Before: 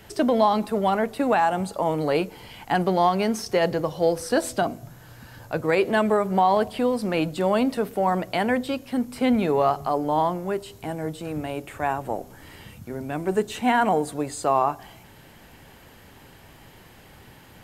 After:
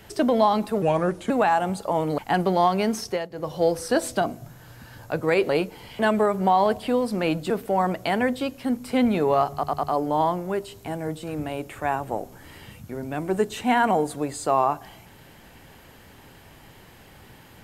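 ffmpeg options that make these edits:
-filter_complex "[0:a]asplit=12[s0][s1][s2][s3][s4][s5][s6][s7][s8][s9][s10][s11];[s0]atrim=end=0.824[s12];[s1]atrim=start=0.82:end=1.21,asetpts=PTS-STARTPTS,asetrate=35721,aresample=44100,atrim=end_sample=21233,asetpts=PTS-STARTPTS[s13];[s2]atrim=start=1.206:end=2.092[s14];[s3]atrim=start=2.588:end=3.69,asetpts=PTS-STARTPTS,afade=t=out:st=0.862:d=0.24:silence=0.105925[s15];[s4]atrim=start=3.69:end=3.71,asetpts=PTS-STARTPTS,volume=0.106[s16];[s5]atrim=start=3.71:end=5.902,asetpts=PTS-STARTPTS,afade=t=in:d=0.24:silence=0.105925[s17];[s6]atrim=start=2.088:end=2.592[s18];[s7]atrim=start=5.898:end=7.412[s19];[s8]atrim=start=7.778:end=9.912[s20];[s9]atrim=start=9.808:end=9.912[s21];[s10]atrim=start=9.808:end=9.912[s22];[s11]atrim=start=9.808[s23];[s12][s13]acrossfade=d=0.004:c1=hsin:c2=hsin[s24];[s24][s14]acrossfade=d=0.004:c1=hsin:c2=hsin[s25];[s15][s16][s17]concat=n=3:v=0:a=1[s26];[s25][s26]acrossfade=d=0.004:c1=hsin:c2=hsin[s27];[s27][s18]acrossfade=d=0.004:c1=hsin:c2=hsin[s28];[s28][s19]acrossfade=d=0.004:c1=hsin:c2=hsin[s29];[s29][s20]acrossfade=d=0.004:c1=hsin:c2=hsin[s30];[s30][s21]acrossfade=d=0.004:c1=hsin:c2=hsin[s31];[s31][s22]acrossfade=d=0.004:c1=hsin:c2=hsin[s32];[s32][s23]acrossfade=d=0.004:c1=hsin:c2=hsin"

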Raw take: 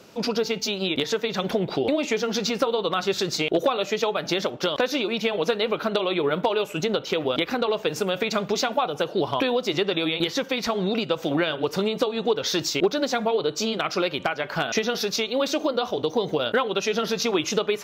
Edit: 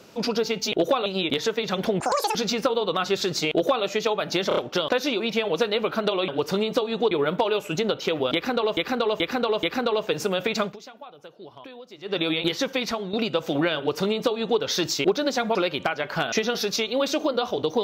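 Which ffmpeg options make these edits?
-filter_complex "[0:a]asplit=17[s0][s1][s2][s3][s4][s5][s6][s7][s8][s9][s10][s11][s12][s13][s14][s15][s16];[s0]atrim=end=0.722[s17];[s1]atrim=start=3.468:end=3.812[s18];[s2]atrim=start=0.718:end=1.664[s19];[s3]atrim=start=1.66:end=2.32,asetpts=PTS-STARTPTS,asetrate=82908,aresample=44100[s20];[s4]atrim=start=2.316:end=4.482[s21];[s5]atrim=start=4.448:end=4.482[s22];[s6]atrim=start=4.448:end=4.482[s23];[s7]atrim=start=4.448:end=6.162[s24];[s8]atrim=start=11.528:end=12.362[s25];[s9]atrim=start=6.158:end=7.822[s26];[s10]atrim=start=7.388:end=7.822[s27];[s11]atrim=start=7.388:end=7.822[s28];[s12]atrim=start=7.388:end=8.52,asetpts=PTS-STARTPTS,afade=t=out:st=1.002:d=0.13:silence=0.105925[s29];[s13]atrim=start=8.52:end=9.79,asetpts=PTS-STARTPTS,volume=0.106[s30];[s14]atrim=start=9.79:end=10.89,asetpts=PTS-STARTPTS,afade=t=in:d=0.13:silence=0.105925,afade=t=out:st=0.8:d=0.3:silence=0.266073[s31];[s15]atrim=start=10.89:end=13.312,asetpts=PTS-STARTPTS,afade=t=in:d=0.004:c=hsin:silence=0.266073[s32];[s16]atrim=start=13.948[s33];[s17][s18]acrossfade=d=0.004:c1=hsin:c2=hsin[s34];[s34][s19]acrossfade=d=0.004:c1=hsin:c2=hsin[s35];[s35][s20]acrossfade=d=0.004:c1=hsin:c2=hsin[s36];[s36][s21]acrossfade=d=0.004:c1=hsin:c2=hsin[s37];[s37][s22]acrossfade=d=0.004:c1=hsin:c2=hsin[s38];[s38][s23]acrossfade=d=0.004:c1=hsin:c2=hsin[s39];[s39][s24]acrossfade=d=0.004:c1=hsin:c2=hsin[s40];[s40][s25]acrossfade=d=0.004:c1=hsin:c2=hsin[s41];[s41][s26]acrossfade=d=0.004:c1=hsin:c2=hsin[s42];[s42][s27]acrossfade=d=0.004:c1=hsin:c2=hsin[s43];[s43][s28]acrossfade=d=0.004:c1=hsin:c2=hsin[s44];[s29][s30][s31][s32]concat=n=4:v=0:a=1[s45];[s44][s45]acrossfade=d=0.004:c1=hsin:c2=hsin[s46];[s46][s33]acrossfade=d=0.004:c1=hsin:c2=hsin"

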